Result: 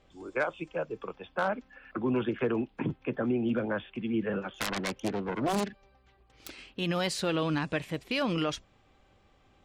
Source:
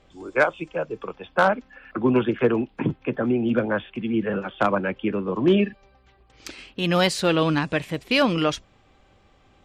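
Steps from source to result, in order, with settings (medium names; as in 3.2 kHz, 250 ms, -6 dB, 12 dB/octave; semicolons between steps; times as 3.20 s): 4.54–6.50 s: self-modulated delay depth 0.97 ms; peak limiter -14 dBFS, peak gain reduction 6 dB; trim -6 dB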